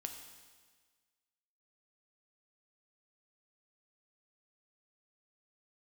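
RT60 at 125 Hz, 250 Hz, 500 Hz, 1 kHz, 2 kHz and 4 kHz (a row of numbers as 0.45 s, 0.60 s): 1.5 s, 1.5 s, 1.5 s, 1.5 s, 1.5 s, 1.5 s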